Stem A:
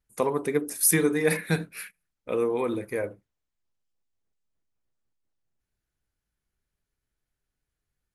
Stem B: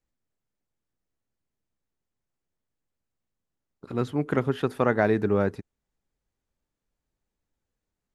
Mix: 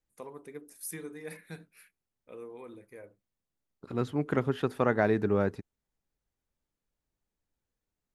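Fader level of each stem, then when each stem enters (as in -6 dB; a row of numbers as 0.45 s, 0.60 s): -19.0 dB, -3.5 dB; 0.00 s, 0.00 s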